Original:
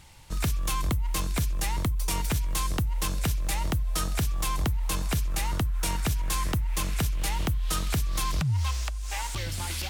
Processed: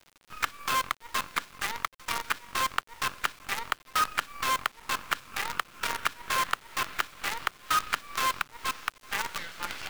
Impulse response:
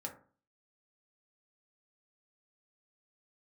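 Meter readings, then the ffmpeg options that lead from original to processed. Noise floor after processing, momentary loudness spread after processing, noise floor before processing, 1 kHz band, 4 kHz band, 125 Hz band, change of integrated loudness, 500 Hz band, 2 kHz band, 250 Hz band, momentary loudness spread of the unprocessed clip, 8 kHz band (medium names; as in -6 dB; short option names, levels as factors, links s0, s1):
-61 dBFS, 6 LU, -32 dBFS, +5.5 dB, +1.0 dB, -24.0 dB, -2.0 dB, -4.0 dB, +6.5 dB, -13.5 dB, 3 LU, -4.5 dB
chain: -af "highpass=f=1300:t=q:w=2.4,adynamicsmooth=sensitivity=1.5:basefreq=2200,acrusher=bits=6:dc=4:mix=0:aa=0.000001,volume=1.68"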